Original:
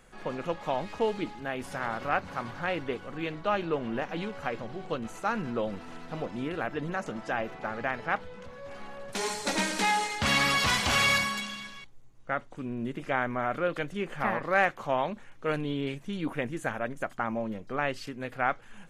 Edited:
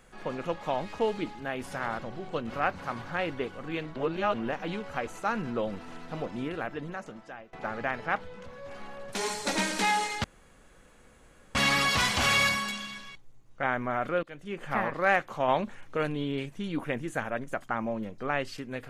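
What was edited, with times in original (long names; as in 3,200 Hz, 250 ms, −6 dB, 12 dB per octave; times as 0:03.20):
0:03.45–0:03.83: reverse
0:04.56–0:05.07: move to 0:01.99
0:06.39–0:07.53: fade out, to −23 dB
0:10.24: splice in room tone 1.31 s
0:12.32–0:13.12: remove
0:13.72–0:14.20: fade in, from −22 dB
0:14.97–0:15.46: clip gain +4 dB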